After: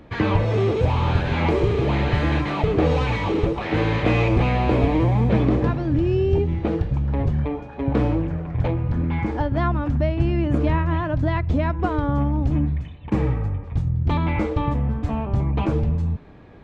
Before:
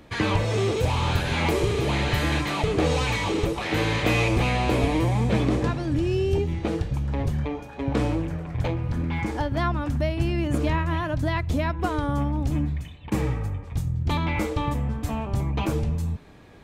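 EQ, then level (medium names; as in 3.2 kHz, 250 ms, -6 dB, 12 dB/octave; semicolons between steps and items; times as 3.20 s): tape spacing loss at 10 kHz 26 dB; +4.5 dB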